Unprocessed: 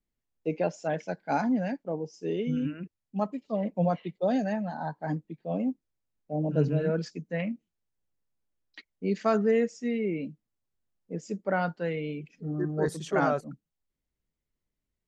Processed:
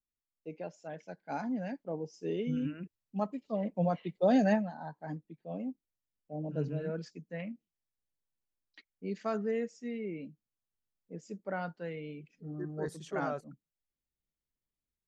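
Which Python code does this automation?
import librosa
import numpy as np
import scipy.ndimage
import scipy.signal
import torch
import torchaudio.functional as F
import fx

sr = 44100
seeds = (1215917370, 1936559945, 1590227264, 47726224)

y = fx.gain(x, sr, db=fx.line((0.9, -13.5), (2.05, -4.0), (3.95, -4.0), (4.53, 4.0), (4.73, -9.0)))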